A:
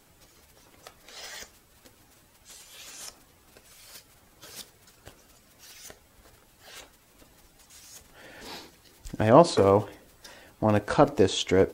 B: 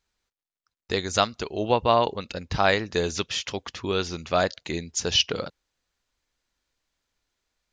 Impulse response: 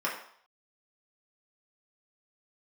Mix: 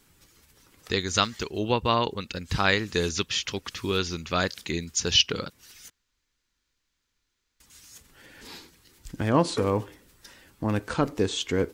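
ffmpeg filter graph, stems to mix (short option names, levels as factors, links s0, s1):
-filter_complex "[0:a]volume=0.891,asplit=3[s0][s1][s2];[s0]atrim=end=5.9,asetpts=PTS-STARTPTS,afade=t=out:st=5.896:d=0.004:c=hsin[s3];[s1]atrim=start=5.9:end=7.6,asetpts=PTS-STARTPTS,volume=0[s4];[s2]atrim=start=7.6,asetpts=PTS-STARTPTS,afade=t=in:d=0.004:c=hsin[s5];[s3][s4][s5]concat=n=3:v=0:a=1[s6];[1:a]volume=1.19,asplit=2[s7][s8];[s8]apad=whole_len=517338[s9];[s6][s9]sidechaincompress=threshold=0.0562:ratio=5:attack=47:release=595[s10];[s10][s7]amix=inputs=2:normalize=0,equalizer=f=670:w=1.7:g=-10.5"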